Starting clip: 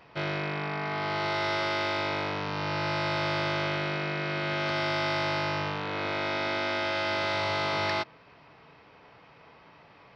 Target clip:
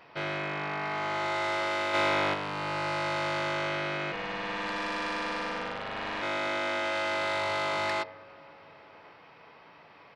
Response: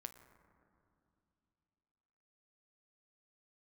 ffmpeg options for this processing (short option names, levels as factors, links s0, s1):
-filter_complex "[0:a]asplit=3[s0][s1][s2];[s0]afade=t=out:st=4.11:d=0.02[s3];[s1]aeval=exprs='val(0)*sin(2*PI*340*n/s)':c=same,afade=t=in:st=4.11:d=0.02,afade=t=out:st=6.21:d=0.02[s4];[s2]afade=t=in:st=6.21:d=0.02[s5];[s3][s4][s5]amix=inputs=3:normalize=0,asplit=2[s6][s7];[1:a]atrim=start_sample=2205,lowpass=3900[s8];[s7][s8]afir=irnorm=-1:irlink=0,volume=0.531[s9];[s6][s9]amix=inputs=2:normalize=0,asoftclip=type=tanh:threshold=0.0708,lowshelf=f=170:g=-11.5,asplit=2[s10][s11];[s11]adelay=1108,volume=0.0562,highshelf=f=4000:g=-24.9[s12];[s10][s12]amix=inputs=2:normalize=0,asplit=3[s13][s14][s15];[s13]afade=t=out:st=1.93:d=0.02[s16];[s14]acontrast=32,afade=t=in:st=1.93:d=0.02,afade=t=out:st=2.33:d=0.02[s17];[s15]afade=t=in:st=2.33:d=0.02[s18];[s16][s17][s18]amix=inputs=3:normalize=0,bandreject=f=64.41:t=h:w=4,bandreject=f=128.82:t=h:w=4,bandreject=f=193.23:t=h:w=4,bandreject=f=257.64:t=h:w=4,bandreject=f=322.05:t=h:w=4,bandreject=f=386.46:t=h:w=4,bandreject=f=450.87:t=h:w=4,bandreject=f=515.28:t=h:w=4,bandreject=f=579.69:t=h:w=4,bandreject=f=644.1:t=h:w=4,bandreject=f=708.51:t=h:w=4,bandreject=f=772.92:t=h:w=4,bandreject=f=837.33:t=h:w=4,bandreject=f=901.74:t=h:w=4,bandreject=f=966.15:t=h:w=4,bandreject=f=1030.56:t=h:w=4,bandreject=f=1094.97:t=h:w=4,bandreject=f=1159.38:t=h:w=4,bandreject=f=1223.79:t=h:w=4,bandreject=f=1288.2:t=h:w=4"